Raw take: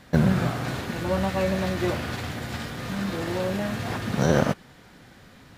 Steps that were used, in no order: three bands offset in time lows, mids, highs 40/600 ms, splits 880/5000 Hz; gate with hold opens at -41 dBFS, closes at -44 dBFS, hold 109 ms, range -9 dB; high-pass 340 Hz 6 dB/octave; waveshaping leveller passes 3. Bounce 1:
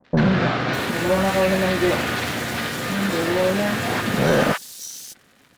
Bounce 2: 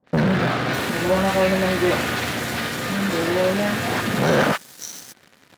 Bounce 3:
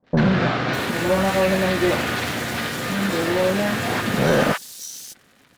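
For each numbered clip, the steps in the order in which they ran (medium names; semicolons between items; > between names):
high-pass > waveshaping leveller > gate with hold > three bands offset in time; gate with hold > three bands offset in time > waveshaping leveller > high-pass; gate with hold > high-pass > waveshaping leveller > three bands offset in time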